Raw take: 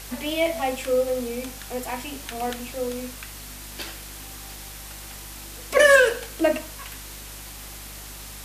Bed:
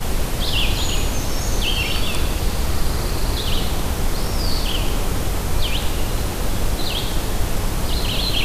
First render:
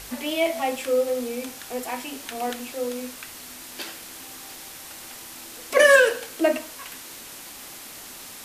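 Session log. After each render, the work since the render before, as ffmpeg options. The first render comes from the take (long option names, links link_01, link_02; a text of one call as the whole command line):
ffmpeg -i in.wav -af "bandreject=frequency=50:width_type=h:width=4,bandreject=frequency=100:width_type=h:width=4,bandreject=frequency=150:width_type=h:width=4,bandreject=frequency=200:width_type=h:width=4" out.wav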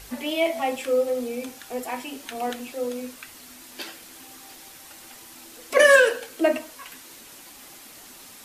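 ffmpeg -i in.wav -af "afftdn=noise_reduction=6:noise_floor=-41" out.wav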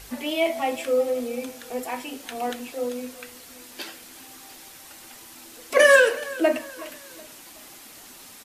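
ffmpeg -i in.wav -af "aecho=1:1:372|744|1116:0.106|0.0424|0.0169" out.wav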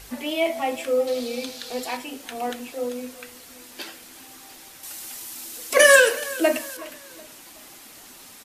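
ffmpeg -i in.wav -filter_complex "[0:a]asettb=1/sr,asplit=3[link_01][link_02][link_03];[link_01]atrim=end=1.074[link_04];[link_02]atrim=start=1.07:end=1.97,asetpts=PTS-STARTPTS,afade=type=in:duration=0.004:curve=qsin,afade=type=out:start_time=0.896:duration=0.004:curve=qsin,equalizer=frequency=4200:width=1.5:gain=14.5[link_05];[link_03]atrim=start=1.966[link_06];[link_04][link_05]acrossfade=duration=0.004:curve1=hsin:curve2=qsin[link_07];[link_07][link_06]acrossfade=duration=0.004:curve1=qsin:curve2=hsin,asettb=1/sr,asplit=3[link_08][link_09][link_10];[link_08]atrim=end=4.834[link_11];[link_09]atrim=start=4.83:end=6.77,asetpts=PTS-STARTPTS,afade=type=in:duration=0.004:curve=qsin,afade=type=out:start_time=1.936:duration=0.004:curve=qsin,highshelf=frequency=3800:gain=11[link_12];[link_10]atrim=start=6.766[link_13];[link_11][link_12]acrossfade=duration=0.004:curve1=hsin:curve2=qsin[link_14];[link_14][link_13]acrossfade=duration=0.004:curve1=qsin:curve2=hsin" out.wav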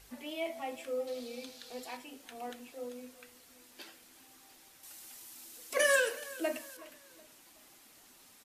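ffmpeg -i in.wav -af "volume=-14dB" out.wav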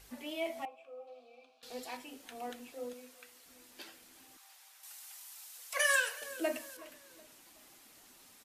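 ffmpeg -i in.wav -filter_complex "[0:a]asettb=1/sr,asplit=3[link_01][link_02][link_03];[link_01]atrim=end=0.654[link_04];[link_02]atrim=start=0.65:end=1.63,asetpts=PTS-STARTPTS,afade=type=in:duration=0.004:curve=qsin,afade=type=out:start_time=0.976:duration=0.004:curve=qsin,asplit=3[link_05][link_06][link_07];[link_05]bandpass=frequency=730:width_type=q:width=8,volume=0dB[link_08];[link_06]bandpass=frequency=1090:width_type=q:width=8,volume=-6dB[link_09];[link_07]bandpass=frequency=2440:width_type=q:width=8,volume=-9dB[link_10];[link_08][link_09][link_10]amix=inputs=3:normalize=0[link_11];[link_03]atrim=start=1.626[link_12];[link_04][link_11]acrossfade=duration=0.004:curve1=hsin:curve2=qsin[link_13];[link_13][link_12]acrossfade=duration=0.004:curve1=qsin:curve2=hsin,asettb=1/sr,asplit=3[link_14][link_15][link_16];[link_14]atrim=end=2.934[link_17];[link_15]atrim=start=2.93:end=3.46,asetpts=PTS-STARTPTS,afade=type=in:duration=0.004:curve=qsin,afade=type=out:start_time=0.526:duration=0.004:curve=qsin,lowshelf=frequency=340:gain=-12[link_18];[link_16]atrim=start=3.456[link_19];[link_17][link_18]acrossfade=duration=0.004:curve1=hsin:curve2=qsin[link_20];[link_20][link_19]acrossfade=duration=0.004:curve1=qsin:curve2=hsin,asettb=1/sr,asplit=3[link_21][link_22][link_23];[link_21]atrim=end=4.374[link_24];[link_22]atrim=start=4.37:end=6.22,asetpts=PTS-STARTPTS,afade=type=in:duration=0.004:curve=qsin,afade=type=out:start_time=1.846:duration=0.004:curve=qsin,highpass=frequency=720:width=0.5412,highpass=frequency=720:width=1.3066[link_25];[link_23]atrim=start=6.216[link_26];[link_24][link_25]acrossfade=duration=0.004:curve1=hsin:curve2=qsin[link_27];[link_27][link_26]acrossfade=duration=0.004:curve1=qsin:curve2=hsin" out.wav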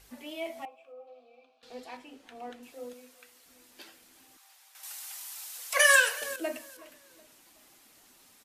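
ffmpeg -i in.wav -filter_complex "[0:a]asettb=1/sr,asplit=3[link_01][link_02][link_03];[link_01]atrim=end=0.924[link_04];[link_02]atrim=start=0.92:end=2.63,asetpts=PTS-STARTPTS,afade=type=in:duration=0.004:curve=qsin,afade=type=out:start_time=1.706:duration=0.004:curve=qsin,aemphasis=mode=reproduction:type=50fm[link_05];[link_03]atrim=start=2.626[link_06];[link_04][link_05]acrossfade=duration=0.004:curve1=hsin:curve2=qsin[link_07];[link_07][link_06]acrossfade=duration=0.004:curve1=qsin:curve2=hsin,asplit=3[link_08][link_09][link_10];[link_08]atrim=end=4.752[link_11];[link_09]atrim=start=4.748:end=6.362,asetpts=PTS-STARTPTS,volume=8.5dB[link_12];[link_10]atrim=start=6.358[link_13];[link_11][link_12]acrossfade=duration=0.004:curve1=hsin:curve2=hsin[link_14];[link_14][link_13]acrossfade=duration=0.004:curve1=hsin:curve2=hsin" out.wav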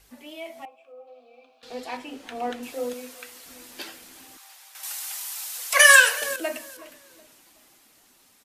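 ffmpeg -i in.wav -filter_complex "[0:a]acrossover=split=640[link_01][link_02];[link_01]alimiter=level_in=13.5dB:limit=-24dB:level=0:latency=1:release=168,volume=-13.5dB[link_03];[link_03][link_02]amix=inputs=2:normalize=0,dynaudnorm=framelen=280:gausssize=13:maxgain=14dB" out.wav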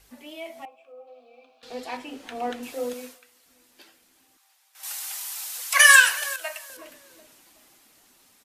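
ffmpeg -i in.wav -filter_complex "[0:a]asettb=1/sr,asplit=3[link_01][link_02][link_03];[link_01]atrim=end=5.624[link_04];[link_02]atrim=start=5.62:end=6.7,asetpts=PTS-STARTPTS,afade=type=in:duration=0.004:curve=qsin,afade=type=out:start_time=1.076:duration=0.004:curve=qsin,highpass=frequency=760:width=0.5412,highpass=frequency=760:width=1.3066[link_05];[link_03]atrim=start=6.696[link_06];[link_04][link_05]acrossfade=duration=0.004:curve1=hsin:curve2=qsin[link_07];[link_07][link_06]acrossfade=duration=0.004:curve1=qsin:curve2=hsin,asplit=3[link_08][link_09][link_10];[link_08]atrim=end=3.2,asetpts=PTS-STARTPTS,afade=type=out:start_time=3.05:duration=0.15:silence=0.188365[link_11];[link_09]atrim=start=3.2:end=4.73,asetpts=PTS-STARTPTS,volume=-14.5dB[link_12];[link_10]atrim=start=4.73,asetpts=PTS-STARTPTS,afade=type=in:duration=0.15:silence=0.188365[link_13];[link_11][link_12][link_13]concat=n=3:v=0:a=1" out.wav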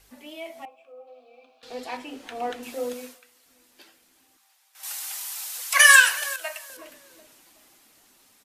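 ffmpeg -i in.wav -af "bandreject=frequency=60:width_type=h:width=6,bandreject=frequency=120:width_type=h:width=6,bandreject=frequency=180:width_type=h:width=6,bandreject=frequency=240:width_type=h:width=6" out.wav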